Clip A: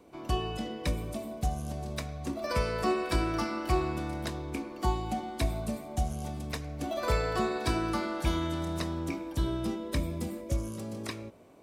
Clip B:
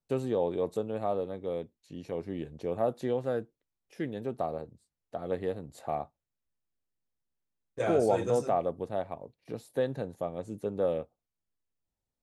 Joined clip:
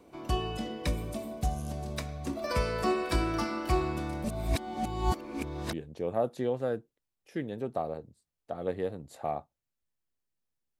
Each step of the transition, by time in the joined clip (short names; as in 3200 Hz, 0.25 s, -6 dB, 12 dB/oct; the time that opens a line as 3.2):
clip A
4.24–5.73 reverse
5.73 switch to clip B from 2.37 s